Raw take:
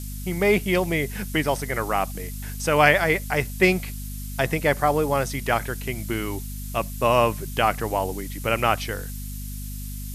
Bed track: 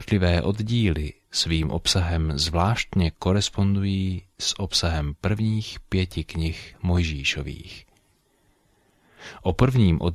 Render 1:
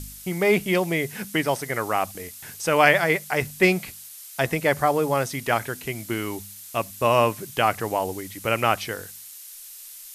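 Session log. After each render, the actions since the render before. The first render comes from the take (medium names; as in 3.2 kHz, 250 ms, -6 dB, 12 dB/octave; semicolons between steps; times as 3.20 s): de-hum 50 Hz, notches 5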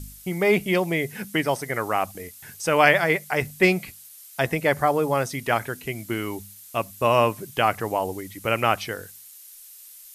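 noise reduction 6 dB, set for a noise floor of -42 dBFS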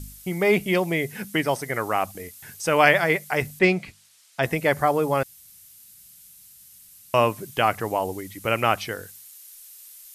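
3.59–4.43 s: distance through air 74 m; 5.23–7.14 s: room tone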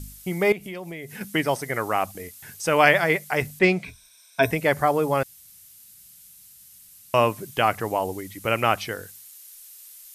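0.52–1.21 s: compression 4:1, threshold -34 dBFS; 3.84–4.51 s: rippled EQ curve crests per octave 1.6, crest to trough 15 dB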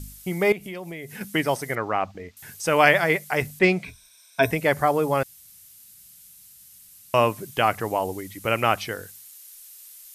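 1.75–2.37 s: distance through air 190 m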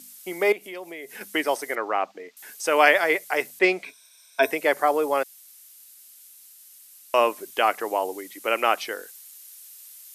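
high-pass 310 Hz 24 dB/octave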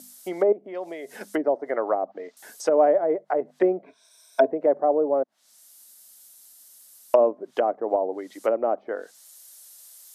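low-pass that closes with the level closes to 500 Hz, closed at -21 dBFS; fifteen-band graphic EQ 250 Hz +4 dB, 630 Hz +9 dB, 2.5 kHz -8 dB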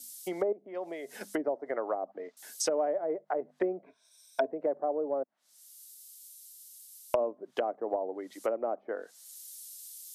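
compression 4:1, threshold -30 dBFS, peak gain reduction 14.5 dB; three bands expanded up and down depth 70%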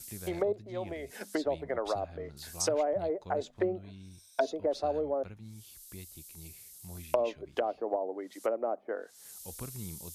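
add bed track -24.5 dB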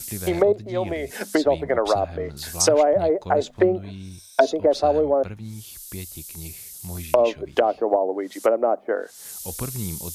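trim +12 dB; peak limiter -2 dBFS, peak gain reduction 2.5 dB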